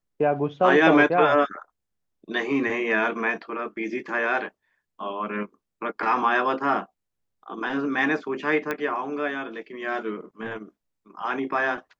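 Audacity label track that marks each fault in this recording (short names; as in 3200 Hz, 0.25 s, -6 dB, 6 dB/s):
8.710000	8.710000	pop -14 dBFS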